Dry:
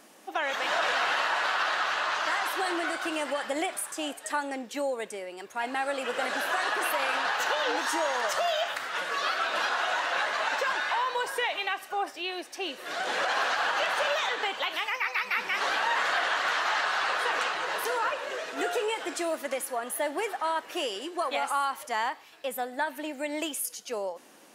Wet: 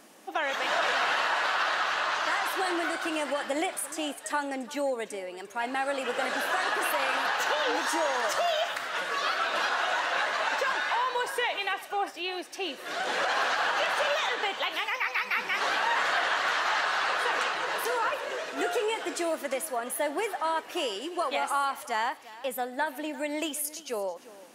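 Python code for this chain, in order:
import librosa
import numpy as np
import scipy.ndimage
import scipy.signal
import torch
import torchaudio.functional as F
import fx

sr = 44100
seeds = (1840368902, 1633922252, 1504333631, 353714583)

p1 = fx.low_shelf(x, sr, hz=320.0, db=2.5)
y = p1 + fx.echo_single(p1, sr, ms=346, db=-18.0, dry=0)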